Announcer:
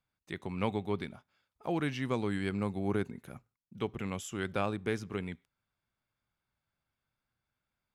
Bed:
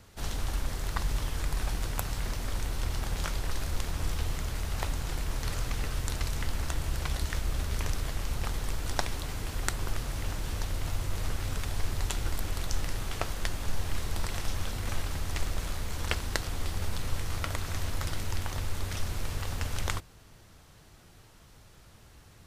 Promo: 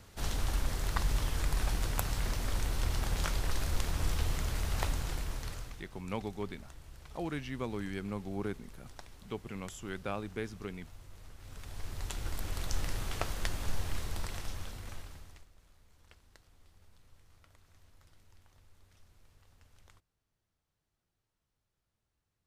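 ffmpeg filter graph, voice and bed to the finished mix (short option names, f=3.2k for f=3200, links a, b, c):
-filter_complex "[0:a]adelay=5500,volume=-5dB[a];[1:a]volume=17dB,afade=t=out:st=4.85:d=0.99:silence=0.105925,afade=t=in:st=11.37:d=1.45:silence=0.133352,afade=t=out:st=13.67:d=1.79:silence=0.0421697[b];[a][b]amix=inputs=2:normalize=0"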